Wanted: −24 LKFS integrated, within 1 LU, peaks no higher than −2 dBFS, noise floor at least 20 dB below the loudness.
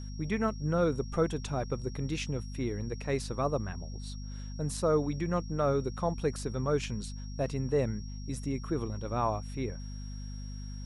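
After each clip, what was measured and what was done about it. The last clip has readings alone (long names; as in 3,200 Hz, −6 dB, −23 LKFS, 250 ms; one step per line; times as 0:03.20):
mains hum 50 Hz; hum harmonics up to 250 Hz; level of the hum −38 dBFS; interfering tone 5,600 Hz; level of the tone −52 dBFS; integrated loudness −33.5 LKFS; sample peak −14.0 dBFS; target loudness −24.0 LKFS
→ mains-hum notches 50/100/150/200/250 Hz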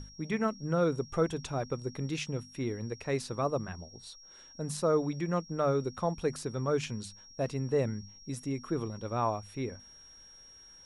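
mains hum none found; interfering tone 5,600 Hz; level of the tone −52 dBFS
→ notch filter 5,600 Hz, Q 30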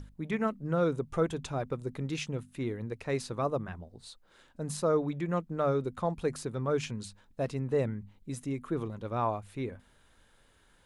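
interfering tone none found; integrated loudness −33.5 LKFS; sample peak −15.5 dBFS; target loudness −24.0 LKFS
→ level +9.5 dB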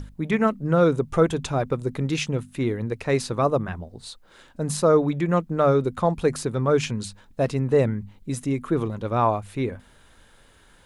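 integrated loudness −24.0 LKFS; sample peak −6.0 dBFS; background noise floor −55 dBFS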